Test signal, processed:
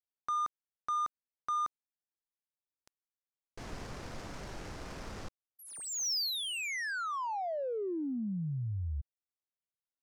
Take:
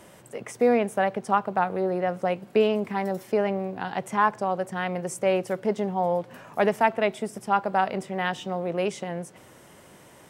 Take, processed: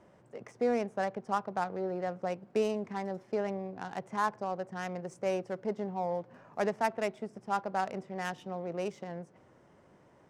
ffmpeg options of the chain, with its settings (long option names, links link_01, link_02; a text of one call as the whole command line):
ffmpeg -i in.wav -af "adynamicsmooth=sensitivity=3.5:basefreq=2000,highshelf=frequency=4300:width_type=q:width=1.5:gain=6.5,volume=-8.5dB" out.wav